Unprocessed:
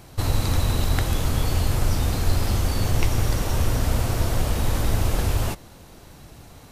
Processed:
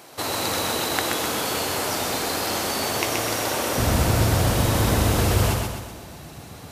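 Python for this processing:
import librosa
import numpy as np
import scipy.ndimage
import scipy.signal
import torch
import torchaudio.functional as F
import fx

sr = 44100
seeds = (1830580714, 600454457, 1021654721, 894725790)

y = fx.highpass(x, sr, hz=fx.steps((0.0, 360.0), (3.78, 86.0)), slope=12)
y = fx.echo_feedback(y, sr, ms=127, feedback_pct=50, wet_db=-3.5)
y = y * 10.0 ** (4.5 / 20.0)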